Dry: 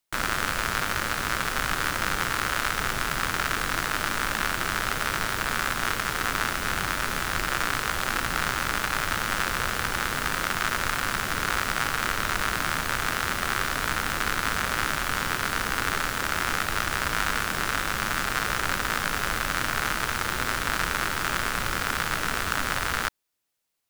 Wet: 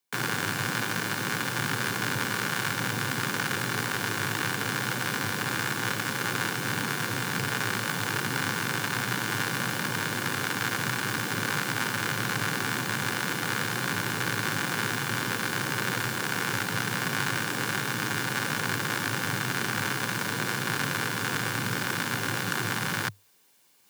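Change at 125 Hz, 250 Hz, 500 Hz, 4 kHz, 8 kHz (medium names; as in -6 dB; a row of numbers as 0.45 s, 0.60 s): +3.5 dB, +3.0 dB, -0.5 dB, -1.5 dB, -1.5 dB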